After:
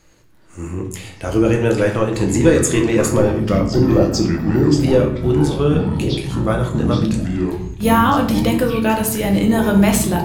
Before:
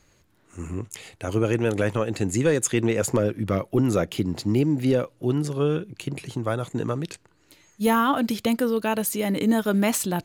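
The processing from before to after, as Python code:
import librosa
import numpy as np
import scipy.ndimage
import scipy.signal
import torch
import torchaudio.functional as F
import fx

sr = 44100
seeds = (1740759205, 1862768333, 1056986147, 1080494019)

y = fx.spec_repair(x, sr, seeds[0], start_s=3.76, length_s=0.92, low_hz=1100.0, high_hz=12000.0, source='both')
y = fx.echo_pitch(y, sr, ms=418, semitones=-6, count=3, db_per_echo=-6.0)
y = fx.room_shoebox(y, sr, seeds[1], volume_m3=100.0, walls='mixed', distance_m=0.69)
y = y * 10.0 ** (4.0 / 20.0)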